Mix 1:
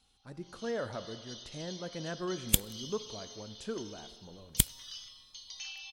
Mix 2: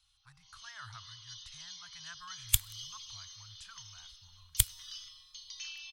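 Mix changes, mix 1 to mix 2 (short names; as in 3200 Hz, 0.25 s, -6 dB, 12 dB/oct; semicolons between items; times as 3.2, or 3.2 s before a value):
speech: send -9.5 dB; master: add elliptic band-stop 110–1100 Hz, stop band 50 dB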